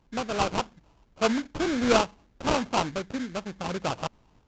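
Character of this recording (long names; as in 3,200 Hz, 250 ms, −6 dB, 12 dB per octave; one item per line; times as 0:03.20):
tremolo saw up 0.68 Hz, depth 35%
aliases and images of a low sample rate 1,900 Hz, jitter 20%
Ogg Vorbis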